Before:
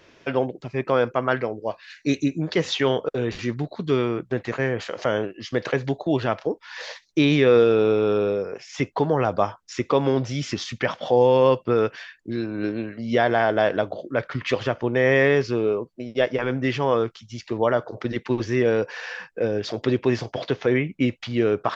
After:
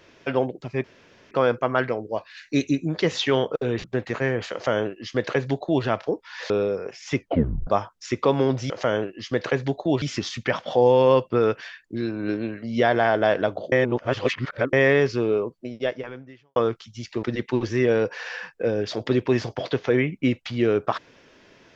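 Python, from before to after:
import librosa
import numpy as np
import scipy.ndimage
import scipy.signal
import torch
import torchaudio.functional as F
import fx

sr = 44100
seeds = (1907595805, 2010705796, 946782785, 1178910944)

y = fx.edit(x, sr, fx.insert_room_tone(at_s=0.84, length_s=0.47),
    fx.cut(start_s=3.37, length_s=0.85),
    fx.duplicate(start_s=4.91, length_s=1.32, to_s=10.37),
    fx.cut(start_s=6.88, length_s=1.29),
    fx.tape_stop(start_s=8.85, length_s=0.49),
    fx.reverse_span(start_s=14.07, length_s=1.01),
    fx.fade_out_span(start_s=16.01, length_s=0.9, curve='qua'),
    fx.cut(start_s=17.58, length_s=0.42), tone=tone)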